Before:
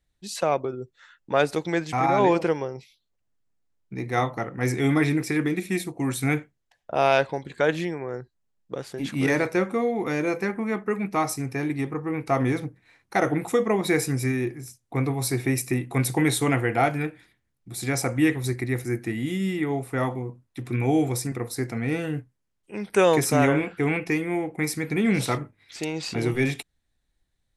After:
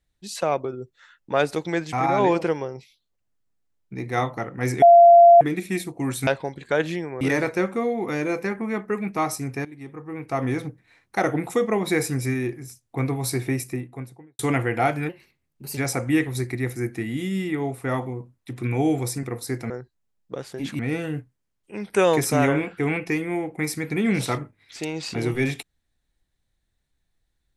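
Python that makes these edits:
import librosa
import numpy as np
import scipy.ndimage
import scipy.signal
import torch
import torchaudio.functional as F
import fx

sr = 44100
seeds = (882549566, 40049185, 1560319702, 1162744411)

y = fx.studio_fade_out(x, sr, start_s=15.3, length_s=1.07)
y = fx.edit(y, sr, fx.bleep(start_s=4.82, length_s=0.59, hz=688.0, db=-7.0),
    fx.cut(start_s=6.27, length_s=0.89),
    fx.move(start_s=8.1, length_s=1.09, to_s=21.79),
    fx.fade_in_from(start_s=11.63, length_s=1.03, floor_db=-18.5),
    fx.speed_span(start_s=17.07, length_s=0.79, speed=1.16), tone=tone)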